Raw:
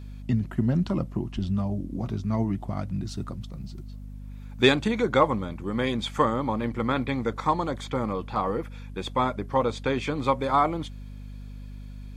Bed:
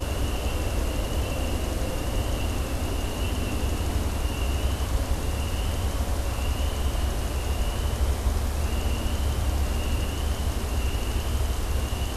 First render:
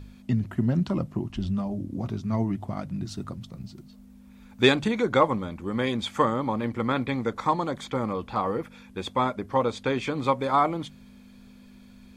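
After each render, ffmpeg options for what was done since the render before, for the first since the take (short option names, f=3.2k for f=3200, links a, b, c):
-af "bandreject=f=50:t=h:w=4,bandreject=f=100:t=h:w=4,bandreject=f=150:t=h:w=4"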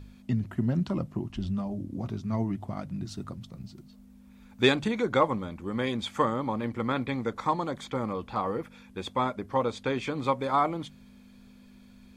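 -af "volume=-3dB"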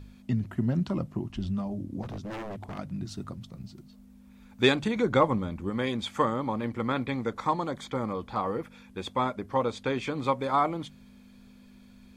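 -filter_complex "[0:a]asettb=1/sr,asplit=3[a][b][c];[a]atrim=end=2.024[d];[b]atrim=start=2.02:end=2.79,asetpts=PTS-STARTPTS,afade=t=in:d=0.004:c=qsin,afade=t=out:st=0.766:d=0.004:c=qsin,aeval=exprs='0.0266*(abs(mod(val(0)/0.0266+3,4)-2)-1)':c=same[e];[c]atrim=start=2.786[f];[d][e]acrossfade=d=0.004:c1=hsin:c2=qsin[g];[g][f]acrossfade=d=0.004:c1=qsin:c2=hsin,asettb=1/sr,asplit=3[h][i][j];[h]atrim=end=4.964[k];[i]atrim=start=4.96:end=5.7,asetpts=PTS-STARTPTS,afade=t=in:d=0.004:c=qsin,afade=t=out:st=0.736:d=0.004:c=qsin,lowshelf=f=250:g=6.5[l];[j]atrim=start=5.696[m];[k][l]acrossfade=d=0.004:c1=hsin:c2=qsin[n];[n][m]acrossfade=d=0.004:c1=qsin:c2=hsin,asettb=1/sr,asplit=3[o][p][q];[o]atrim=end=7.684[r];[p]atrim=start=7.68:end=8.35,asetpts=PTS-STARTPTS,afade=t=in:d=0.004:c=qsin,afade=t=out:st=0.666:d=0.004:c=qsin,bandreject=f=2.7k:w=9.1[s];[q]atrim=start=8.346[t];[r][s]acrossfade=d=0.004:c1=hsin:c2=qsin[u];[u][t]acrossfade=d=0.004:c1=qsin:c2=hsin"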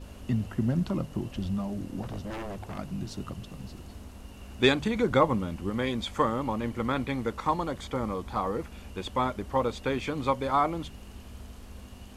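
-filter_complex "[1:a]volume=-19dB[a];[0:a][a]amix=inputs=2:normalize=0"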